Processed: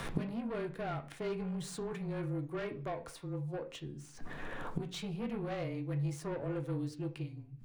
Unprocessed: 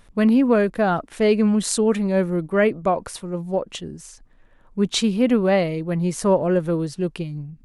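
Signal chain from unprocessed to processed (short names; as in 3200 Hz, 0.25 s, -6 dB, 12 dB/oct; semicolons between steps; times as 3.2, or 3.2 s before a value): median filter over 3 samples; low shelf 65 Hz -2 dB; in parallel at -1 dB: limiter -13.5 dBFS, peak gain reduction 6.5 dB; on the sum: frequency shift -25 Hz; soft clip -12.5 dBFS, distortion -13 dB; flipped gate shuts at -28 dBFS, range -29 dB; on a send at -4.5 dB: reverb RT60 0.40 s, pre-delay 3 ms; on the sum: three-band squash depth 40%; gain +8 dB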